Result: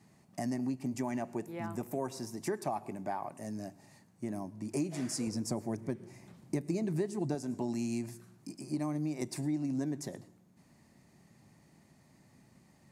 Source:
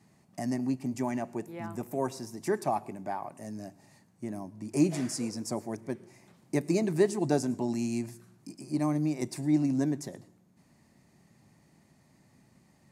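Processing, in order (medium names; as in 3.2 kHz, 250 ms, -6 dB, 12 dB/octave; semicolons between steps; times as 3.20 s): 5.27–7.35 s: bass shelf 240 Hz +8.5 dB; compression 5:1, threshold -31 dBFS, peak gain reduction 14 dB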